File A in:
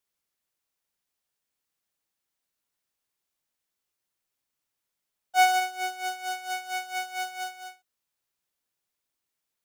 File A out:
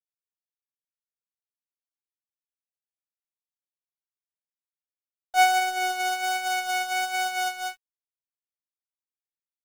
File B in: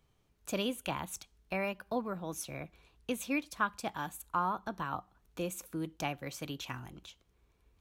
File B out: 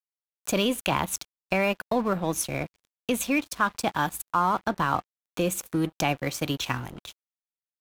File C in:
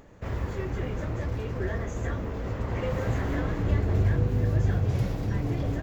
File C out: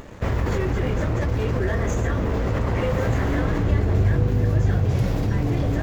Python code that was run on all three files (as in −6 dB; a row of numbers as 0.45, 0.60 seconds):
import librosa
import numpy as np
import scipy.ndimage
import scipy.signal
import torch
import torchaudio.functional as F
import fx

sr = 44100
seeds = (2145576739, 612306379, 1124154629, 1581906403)

p1 = fx.over_compress(x, sr, threshold_db=-36.0, ratio=-1.0)
p2 = x + (p1 * librosa.db_to_amplitude(1.0))
p3 = fx.vibrato(p2, sr, rate_hz=1.3, depth_cents=6.7)
p4 = np.sign(p3) * np.maximum(np.abs(p3) - 10.0 ** (-46.5 / 20.0), 0.0)
y = p4 * 10.0 ** (-9 / 20.0) / np.max(np.abs(p4))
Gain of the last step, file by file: +1.5, +6.0, +4.0 decibels